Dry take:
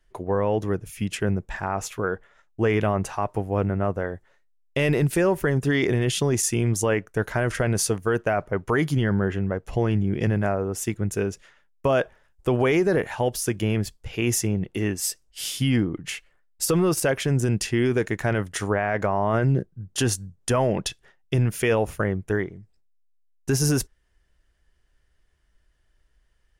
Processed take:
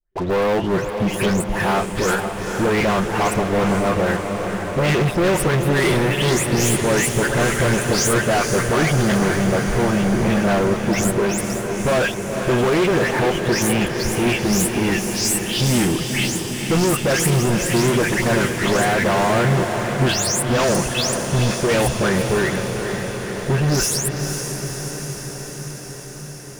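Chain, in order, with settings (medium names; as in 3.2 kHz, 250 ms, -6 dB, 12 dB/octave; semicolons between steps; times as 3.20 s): delay that grows with frequency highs late, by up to 267 ms; treble shelf 9.8 kHz -7 dB; waveshaping leveller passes 5; echo that smears into a reverb 477 ms, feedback 74%, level -7 dB; trim -5 dB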